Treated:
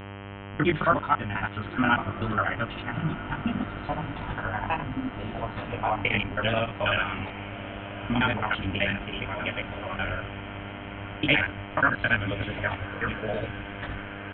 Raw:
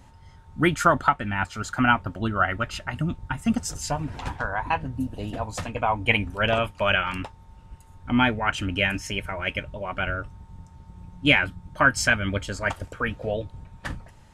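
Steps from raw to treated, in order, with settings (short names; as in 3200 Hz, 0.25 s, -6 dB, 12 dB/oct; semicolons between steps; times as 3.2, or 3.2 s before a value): local time reversal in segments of 54 ms; chorus 0.74 Hz, delay 17.5 ms, depth 2.7 ms; buzz 100 Hz, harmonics 32, -40 dBFS -4 dB/oct; on a send: diffused feedback echo 1.233 s, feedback 65%, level -14 dB; on the sum: downsampling 8000 Hz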